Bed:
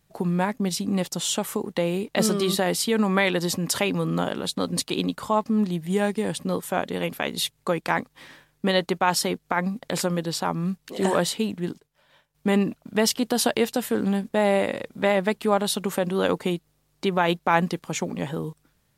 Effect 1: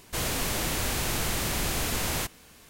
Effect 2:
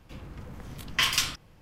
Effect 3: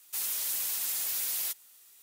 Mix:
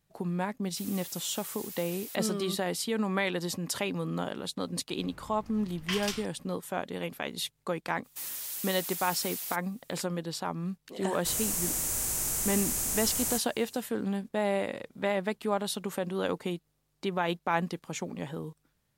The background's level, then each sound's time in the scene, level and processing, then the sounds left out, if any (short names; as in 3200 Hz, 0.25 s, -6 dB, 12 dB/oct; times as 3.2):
bed -8 dB
0.63 add 3 -11.5 dB + record warp 78 rpm, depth 100 cents
4.9 add 2 -9.5 dB
8.03 add 3 -5.5 dB, fades 0.02 s
11.12 add 1 -10.5 dB + resonant high shelf 5300 Hz +12.5 dB, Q 1.5